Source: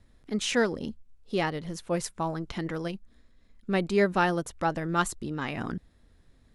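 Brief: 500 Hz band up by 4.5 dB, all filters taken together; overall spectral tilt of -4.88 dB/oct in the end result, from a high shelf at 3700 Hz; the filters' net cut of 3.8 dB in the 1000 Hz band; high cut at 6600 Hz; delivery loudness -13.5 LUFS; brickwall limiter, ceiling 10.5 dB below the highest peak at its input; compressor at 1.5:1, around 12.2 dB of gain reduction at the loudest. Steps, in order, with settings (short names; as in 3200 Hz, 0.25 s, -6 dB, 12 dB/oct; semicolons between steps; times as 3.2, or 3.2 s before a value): LPF 6600 Hz; bell 500 Hz +7.5 dB; bell 1000 Hz -9 dB; high shelf 3700 Hz +7 dB; compressor 1.5:1, threshold -51 dBFS; gain +29 dB; limiter -3.5 dBFS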